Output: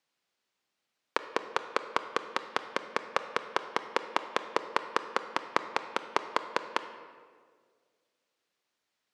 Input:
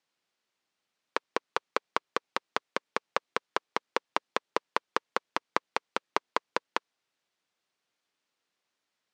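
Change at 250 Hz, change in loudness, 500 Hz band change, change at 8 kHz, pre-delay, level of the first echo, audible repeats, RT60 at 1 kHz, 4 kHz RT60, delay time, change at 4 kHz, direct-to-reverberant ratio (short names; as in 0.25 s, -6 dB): +1.0 dB, +0.5 dB, +0.5 dB, 0.0 dB, 25 ms, none, none, 1.6 s, 1.1 s, none, +0.5 dB, 10.0 dB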